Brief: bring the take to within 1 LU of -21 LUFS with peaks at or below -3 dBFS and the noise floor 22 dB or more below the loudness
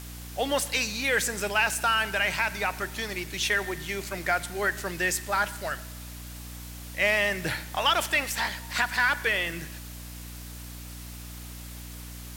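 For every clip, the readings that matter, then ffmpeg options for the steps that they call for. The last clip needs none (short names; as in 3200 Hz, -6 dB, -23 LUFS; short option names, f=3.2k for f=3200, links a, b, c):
hum 60 Hz; harmonics up to 300 Hz; hum level -39 dBFS; noise floor -41 dBFS; noise floor target -49 dBFS; loudness -26.5 LUFS; peak -12.0 dBFS; loudness target -21.0 LUFS
-> -af "bandreject=f=60:t=h:w=4,bandreject=f=120:t=h:w=4,bandreject=f=180:t=h:w=4,bandreject=f=240:t=h:w=4,bandreject=f=300:t=h:w=4"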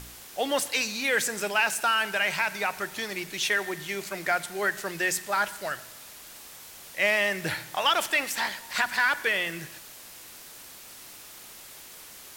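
hum none; noise floor -46 dBFS; noise floor target -49 dBFS
-> -af "afftdn=nr=6:nf=-46"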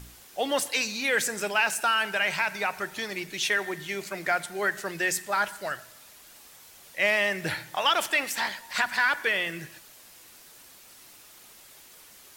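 noise floor -52 dBFS; loudness -26.5 LUFS; peak -12.0 dBFS; loudness target -21.0 LUFS
-> -af "volume=5.5dB"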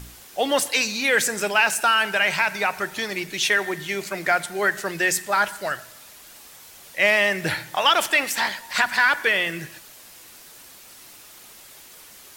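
loudness -21.0 LUFS; peak -6.5 dBFS; noise floor -46 dBFS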